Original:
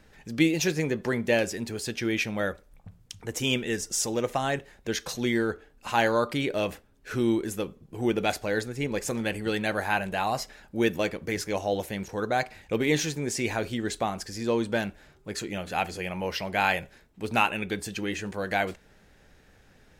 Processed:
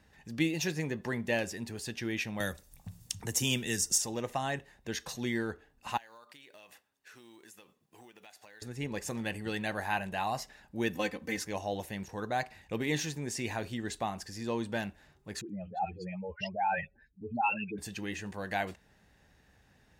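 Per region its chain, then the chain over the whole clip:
2.4–3.98 tone controls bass +4 dB, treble +12 dB + three-band squash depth 40%
5.97–8.62 block floating point 7-bit + HPF 1300 Hz 6 dB/oct + compressor 12:1, threshold -43 dBFS
10.95–11.45 low shelf 68 Hz -11 dB + comb 3.9 ms, depth 89%
15.41–17.78 spectral contrast raised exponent 2.6 + dispersion highs, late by 88 ms, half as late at 1300 Hz
whole clip: HPF 43 Hz; comb 1.1 ms, depth 31%; gain -6.5 dB

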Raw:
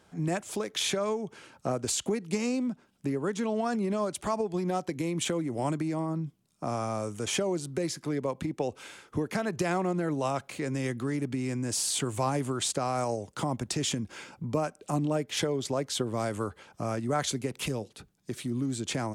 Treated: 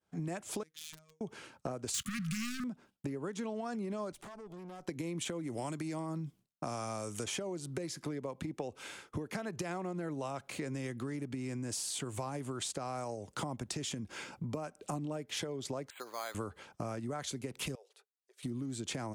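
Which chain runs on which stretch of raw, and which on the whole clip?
0.63–1.21 wrapped overs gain 20.5 dB + robotiser 157 Hz + passive tone stack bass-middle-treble 6-0-2
1.94–2.64 sample leveller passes 5 + brick-wall FIR band-stop 240–1100 Hz
4.12–4.87 HPF 98 Hz + compressor 8:1, threshold -38 dBFS + tube stage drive 44 dB, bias 0.7
5.43–7.24 high shelf 2100 Hz +9 dB + mismatched tape noise reduction decoder only
15.9–16.35 HPF 1000 Hz + careless resampling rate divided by 8×, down filtered, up hold
17.75–18.43 compressor 2:1, threshold -58 dBFS + brick-wall FIR high-pass 370 Hz
whole clip: expander -49 dBFS; compressor 10:1, threshold -35 dBFS

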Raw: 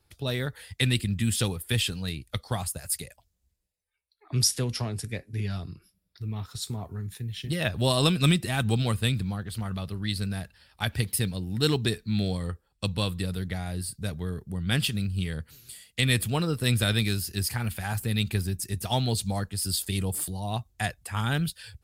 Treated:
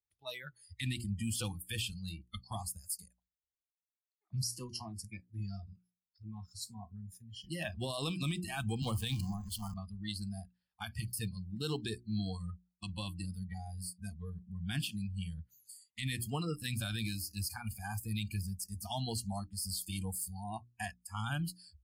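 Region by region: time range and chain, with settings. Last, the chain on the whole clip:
8.82–9.74 zero-crossing step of -27.5 dBFS + dynamic EQ 3400 Hz, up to +6 dB, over -42 dBFS, Q 2.8 + three-band expander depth 70%
whole clip: spectral noise reduction 25 dB; notches 60/120/180/240/300/360 Hz; limiter -19 dBFS; gain -7.5 dB

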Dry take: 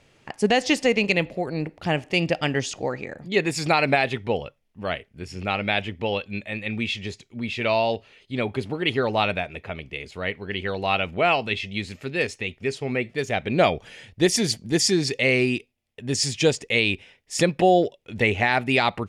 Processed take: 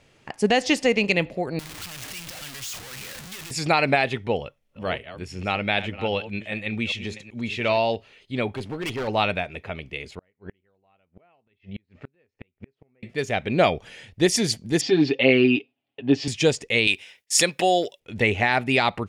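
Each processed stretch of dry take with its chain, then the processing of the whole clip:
1.59–3.51 infinite clipping + passive tone stack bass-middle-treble 5-5-5 + three-band squash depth 40%
4.24–7.78 reverse delay 0.383 s, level -13 dB + notch 4800 Hz, Q 18
8.52–9.08 tube stage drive 19 dB, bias 0.4 + overloaded stage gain 25.5 dB
10.15–13.03 Bessel low-pass 1600 Hz + flipped gate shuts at -24 dBFS, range -39 dB
14.81–16.28 speaker cabinet 170–3600 Hz, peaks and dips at 300 Hz +9 dB, 750 Hz +7 dB, 2000 Hz -5 dB, 2900 Hz +4 dB + comb 7.3 ms, depth 76%
16.87–18 gate with hold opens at -44 dBFS, closes at -47 dBFS + tilt +3.5 dB/oct
whole clip: dry

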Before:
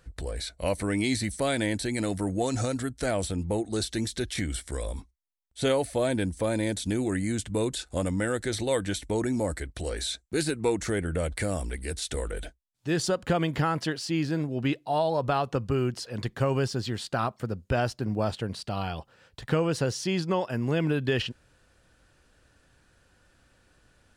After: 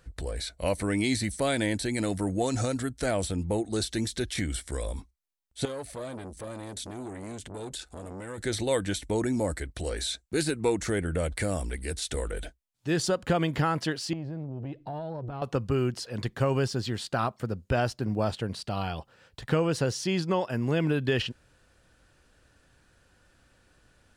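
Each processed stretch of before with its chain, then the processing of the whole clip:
5.65–8.38 compressor 4:1, threshold -32 dBFS + core saturation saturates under 880 Hz
14.13–15.42 RIAA curve playback + compressor, threshold -32 dBFS + core saturation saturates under 330 Hz
whole clip: dry

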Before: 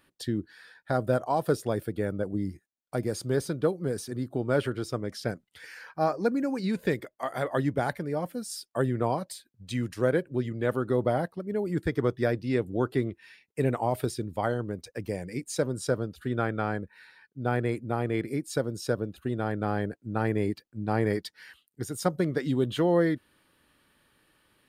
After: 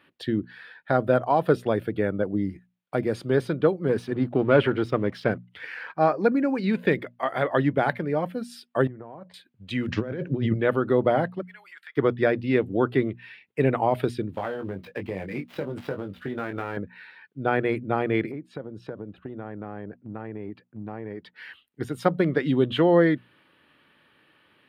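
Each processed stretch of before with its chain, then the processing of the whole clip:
3.89–5.96 high shelf 4900 Hz -7.5 dB + sample leveller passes 1
8.87–9.34 LPF 1400 Hz + compressor 16:1, threshold -40 dBFS
9.88–10.54 negative-ratio compressor -35 dBFS + low shelf 250 Hz +9 dB + careless resampling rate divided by 3×, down none, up filtered
11.42–11.97 HPF 1300 Hz 24 dB/oct + compressor 4:1, threshold -49 dBFS
14.32–16.77 switching dead time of 0.061 ms + compressor 12:1, threshold -30 dBFS + doubler 21 ms -5.5 dB
18.31–21.36 LPF 1100 Hz 6 dB/oct + compressor 5:1, threshold -36 dBFS
whole clip: HPF 110 Hz; resonant high shelf 4400 Hz -14 dB, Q 1.5; notches 60/120/180/240 Hz; gain +5 dB

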